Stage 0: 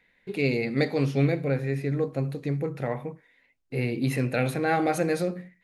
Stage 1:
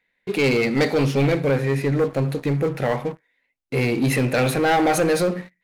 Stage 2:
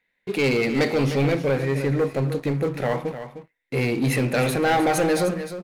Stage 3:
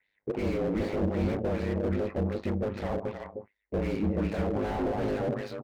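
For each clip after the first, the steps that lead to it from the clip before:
low-shelf EQ 250 Hz −6 dB; leveller curve on the samples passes 3
single-tap delay 306 ms −11 dB; level −2 dB
ring modulation 51 Hz; auto-filter low-pass sine 2.6 Hz 520–4,900 Hz; slew-rate limiting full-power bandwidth 30 Hz; level −3 dB

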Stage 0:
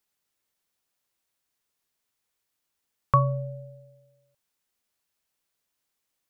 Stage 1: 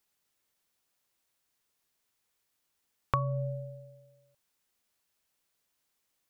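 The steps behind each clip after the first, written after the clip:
downward compressor 5 to 1, threshold −28 dBFS, peak gain reduction 12 dB
level +1.5 dB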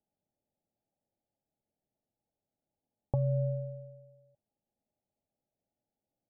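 Chebyshev low-pass with heavy ripple 860 Hz, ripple 6 dB
parametric band 110 Hz +3 dB
level +4 dB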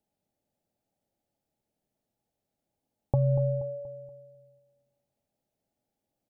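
repeating echo 238 ms, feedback 42%, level −11.5 dB
level +5 dB

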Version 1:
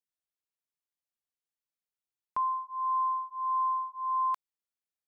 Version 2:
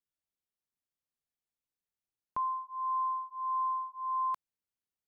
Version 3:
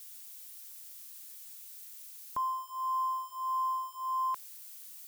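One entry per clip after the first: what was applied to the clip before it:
low-shelf EQ 420 Hz +9.5 dB; level −4.5 dB
spike at every zero crossing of −41.5 dBFS

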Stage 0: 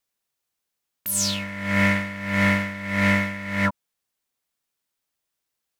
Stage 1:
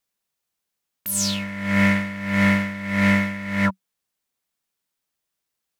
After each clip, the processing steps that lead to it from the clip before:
parametric band 190 Hz +5 dB 0.25 octaves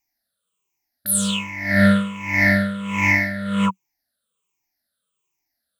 rippled gain that drifts along the octave scale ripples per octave 0.72, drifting −1.3 Hz, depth 23 dB
level −3 dB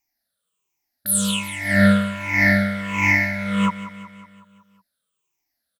repeating echo 185 ms, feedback 56%, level −14 dB

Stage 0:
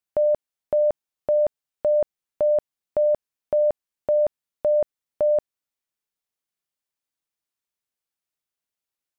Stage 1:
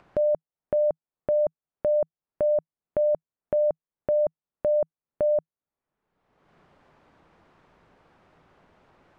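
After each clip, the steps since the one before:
low-pass filter 1,100 Hz 12 dB per octave
parametric band 160 Hz +4.5 dB 0.26 octaves
upward compression, threshold −25 dBFS
level −2.5 dB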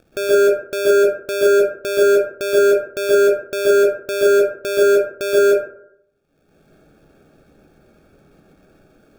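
sample-rate reduction 1,000 Hz, jitter 0%
dense smooth reverb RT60 0.69 s, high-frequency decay 0.3×, pre-delay 115 ms, DRR −7 dB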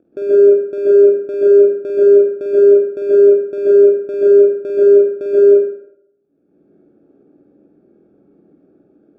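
resonant band-pass 310 Hz, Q 2.6
flutter between parallel walls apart 8.5 metres, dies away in 0.53 s
level +5.5 dB

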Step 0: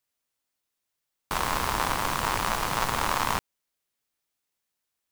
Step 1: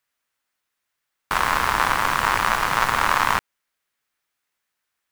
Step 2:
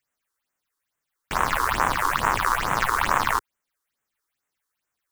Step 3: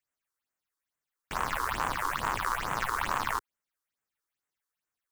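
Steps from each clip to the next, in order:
parametric band 1,600 Hz +9.5 dB 1.7 octaves; level +1 dB
all-pass phaser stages 6, 2.3 Hz, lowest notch 160–4,600 Hz
hard clipping −11 dBFS, distortion −20 dB; level −8 dB

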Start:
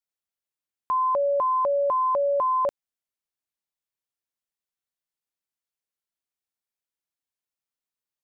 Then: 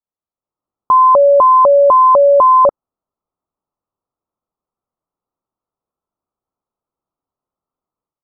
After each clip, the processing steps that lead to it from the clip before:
Chebyshev low-pass filter 1,300 Hz, order 6
automatic gain control gain up to 11 dB
level +4.5 dB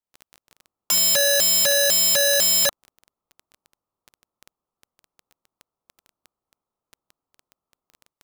surface crackle 11 per second −29 dBFS
wrap-around overflow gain 14.5 dB

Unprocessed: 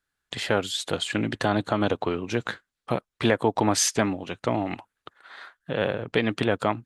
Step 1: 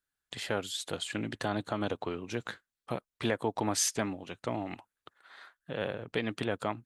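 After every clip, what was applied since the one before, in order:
high-shelf EQ 7,800 Hz +8 dB
level −9 dB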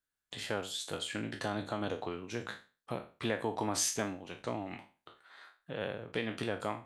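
peak hold with a decay on every bin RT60 0.34 s
level −4 dB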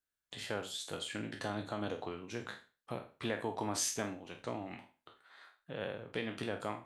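flutter between parallel walls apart 8.2 metres, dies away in 0.22 s
level −3 dB

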